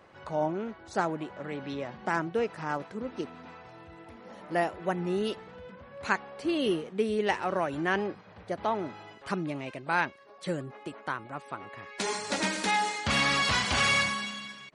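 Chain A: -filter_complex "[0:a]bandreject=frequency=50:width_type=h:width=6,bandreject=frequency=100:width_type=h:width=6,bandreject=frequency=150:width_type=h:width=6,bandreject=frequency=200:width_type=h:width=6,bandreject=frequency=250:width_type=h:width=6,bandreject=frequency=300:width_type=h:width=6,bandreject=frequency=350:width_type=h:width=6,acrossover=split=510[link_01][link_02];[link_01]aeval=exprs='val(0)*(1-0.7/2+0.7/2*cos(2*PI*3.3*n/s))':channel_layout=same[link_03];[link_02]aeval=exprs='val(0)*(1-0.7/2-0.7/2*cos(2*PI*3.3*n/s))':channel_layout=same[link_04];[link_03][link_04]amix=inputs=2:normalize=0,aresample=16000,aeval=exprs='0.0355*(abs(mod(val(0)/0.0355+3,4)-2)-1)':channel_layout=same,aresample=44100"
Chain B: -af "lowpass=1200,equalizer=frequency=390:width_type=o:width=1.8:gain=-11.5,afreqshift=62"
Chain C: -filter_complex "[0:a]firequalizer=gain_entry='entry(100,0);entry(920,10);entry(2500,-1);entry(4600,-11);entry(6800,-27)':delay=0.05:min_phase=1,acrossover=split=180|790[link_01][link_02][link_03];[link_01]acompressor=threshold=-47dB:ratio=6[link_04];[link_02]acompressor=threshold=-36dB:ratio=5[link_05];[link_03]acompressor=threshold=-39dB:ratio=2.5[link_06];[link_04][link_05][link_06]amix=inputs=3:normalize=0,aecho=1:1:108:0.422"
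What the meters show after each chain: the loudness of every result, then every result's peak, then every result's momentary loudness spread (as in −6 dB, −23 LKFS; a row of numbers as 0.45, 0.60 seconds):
−37.5, −38.5, −35.0 LKFS; −24.5, −18.0, −17.5 dBFS; 14, 17, 9 LU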